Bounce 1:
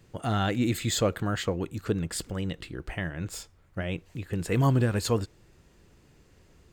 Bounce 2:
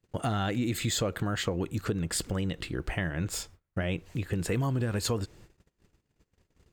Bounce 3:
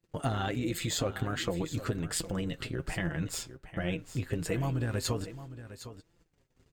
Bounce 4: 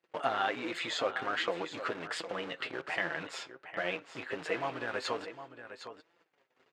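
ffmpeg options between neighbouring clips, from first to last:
ffmpeg -i in.wav -filter_complex "[0:a]agate=range=-28dB:threshold=-54dB:ratio=16:detection=peak,asplit=2[link_01][link_02];[link_02]alimiter=limit=-23dB:level=0:latency=1,volume=-3dB[link_03];[link_01][link_03]amix=inputs=2:normalize=0,acompressor=threshold=-26dB:ratio=6" out.wav
ffmpeg -i in.wav -af "tremolo=f=170:d=0.519,aecho=1:1:759:0.211,flanger=delay=5.8:depth=2.1:regen=38:speed=1.3:shape=sinusoidal,volume=4dB" out.wav
ffmpeg -i in.wav -filter_complex "[0:a]asplit=2[link_01][link_02];[link_02]aeval=exprs='(mod(53.1*val(0)+1,2)-1)/53.1':channel_layout=same,volume=-11dB[link_03];[link_01][link_03]amix=inputs=2:normalize=0,highpass=600,lowpass=2800,volume=5.5dB" out.wav

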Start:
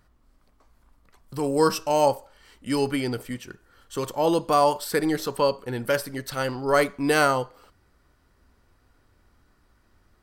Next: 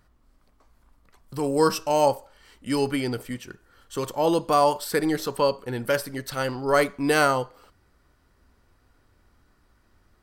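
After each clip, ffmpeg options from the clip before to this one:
ffmpeg -i in.wav -af anull out.wav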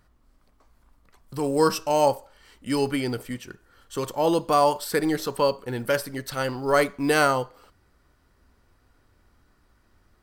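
ffmpeg -i in.wav -af "acrusher=bits=9:mode=log:mix=0:aa=0.000001" out.wav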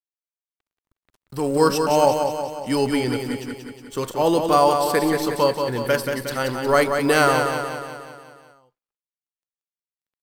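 ffmpeg -i in.wav -af "aeval=exprs='sgn(val(0))*max(abs(val(0))-0.00299,0)':channel_layout=same,aecho=1:1:181|362|543|724|905|1086|1267:0.501|0.281|0.157|0.088|0.0493|0.0276|0.0155,volume=3dB" out.wav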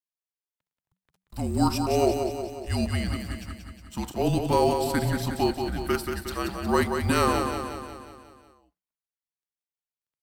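ffmpeg -i in.wav -af "afreqshift=-190,volume=-5.5dB" out.wav

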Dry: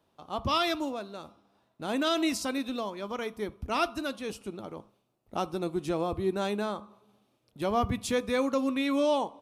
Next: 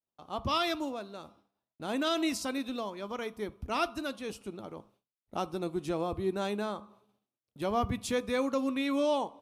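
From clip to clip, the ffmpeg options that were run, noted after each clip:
ffmpeg -i in.wav -af "agate=range=-33dB:threshold=-57dB:ratio=3:detection=peak,volume=-2.5dB" out.wav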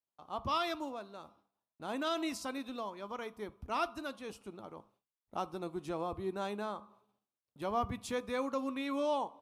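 ffmpeg -i in.wav -af "equalizer=frequency=1000:width_type=o:width=1.2:gain=6,volume=-7dB" out.wav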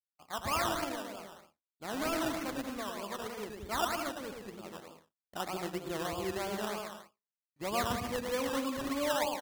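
ffmpeg -i in.wav -af "aecho=1:1:110|187|240.9|278.6|305:0.631|0.398|0.251|0.158|0.1,agate=range=-33dB:threshold=-50dB:ratio=3:detection=peak,acrusher=samples=16:mix=1:aa=0.000001:lfo=1:lforange=9.6:lforate=3.2" out.wav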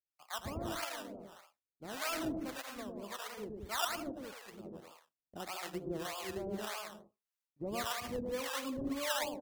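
ffmpeg -i in.wav -filter_complex "[0:a]acrossover=split=830|1200[link_01][link_02][link_03];[link_02]acompressor=threshold=-55dB:ratio=6[link_04];[link_01][link_04][link_03]amix=inputs=3:normalize=0,acrossover=split=630[link_05][link_06];[link_05]aeval=exprs='val(0)*(1-1/2+1/2*cos(2*PI*1.7*n/s))':channel_layout=same[link_07];[link_06]aeval=exprs='val(0)*(1-1/2-1/2*cos(2*PI*1.7*n/s))':channel_layout=same[link_08];[link_07][link_08]amix=inputs=2:normalize=0,volume=1.5dB" out.wav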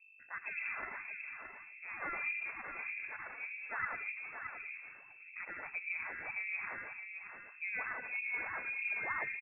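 ffmpeg -i in.wav -af "aeval=exprs='val(0)+0.00112*(sin(2*PI*50*n/s)+sin(2*PI*2*50*n/s)/2+sin(2*PI*3*50*n/s)/3+sin(2*PI*4*50*n/s)/4+sin(2*PI*5*50*n/s)/5)':channel_layout=same,aecho=1:1:621:0.422,lowpass=frequency=2300:width_type=q:width=0.5098,lowpass=frequency=2300:width_type=q:width=0.6013,lowpass=frequency=2300:width_type=q:width=0.9,lowpass=frequency=2300:width_type=q:width=2.563,afreqshift=-2700,volume=-1dB" out.wav

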